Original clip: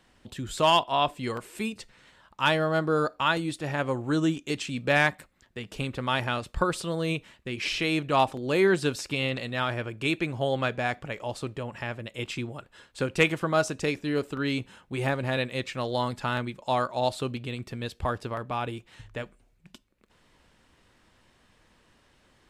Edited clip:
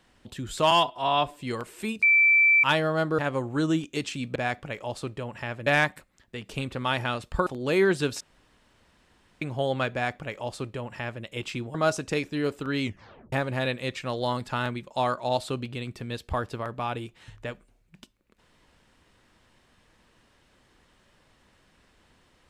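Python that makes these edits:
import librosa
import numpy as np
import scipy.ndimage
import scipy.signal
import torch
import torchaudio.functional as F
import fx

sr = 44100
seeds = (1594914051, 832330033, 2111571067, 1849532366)

y = fx.edit(x, sr, fx.stretch_span(start_s=0.71, length_s=0.47, factor=1.5),
    fx.bleep(start_s=1.79, length_s=0.61, hz=2330.0, db=-15.5),
    fx.cut(start_s=2.95, length_s=0.77),
    fx.cut(start_s=6.69, length_s=1.6),
    fx.room_tone_fill(start_s=9.03, length_s=1.21),
    fx.duplicate(start_s=10.75, length_s=1.31, to_s=4.89),
    fx.cut(start_s=12.57, length_s=0.89),
    fx.tape_stop(start_s=14.54, length_s=0.5), tone=tone)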